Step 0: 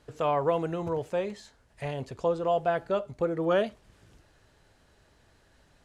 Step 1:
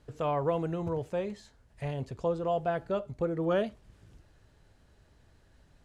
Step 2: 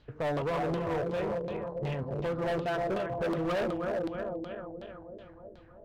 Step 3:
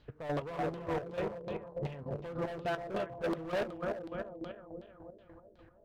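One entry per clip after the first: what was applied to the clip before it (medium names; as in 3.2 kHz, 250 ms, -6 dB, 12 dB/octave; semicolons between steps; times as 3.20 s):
bass shelf 250 Hz +9 dB; trim -5 dB
backward echo that repeats 157 ms, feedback 79%, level -6.5 dB; LFO low-pass saw down 2.7 Hz 330–4200 Hz; hard clipper -28 dBFS, distortion -7 dB
square tremolo 3.4 Hz, depth 65%, duty 35%; trim -2 dB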